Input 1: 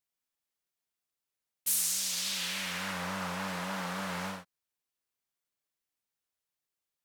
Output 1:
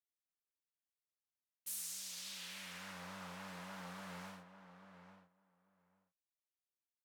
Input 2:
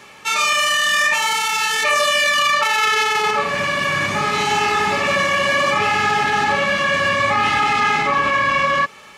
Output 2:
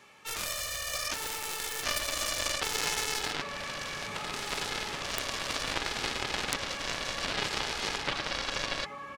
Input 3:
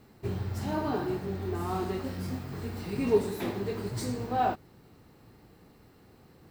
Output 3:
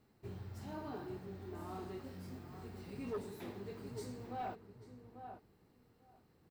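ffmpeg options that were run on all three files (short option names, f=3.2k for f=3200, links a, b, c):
-filter_complex "[0:a]asplit=2[a][b];[b]adelay=842,lowpass=f=1.6k:p=1,volume=-9dB,asplit=2[c][d];[d]adelay=842,lowpass=f=1.6k:p=1,volume=0.15[e];[a][c][e]amix=inputs=3:normalize=0,aeval=exprs='0.531*(cos(1*acos(clip(val(0)/0.531,-1,1)))-cos(1*PI/2))+0.237*(cos(3*acos(clip(val(0)/0.531,-1,1)))-cos(3*PI/2))':c=same,aeval=exprs='(mod(1.78*val(0)+1,2)-1)/1.78':c=same,volume=-4.5dB"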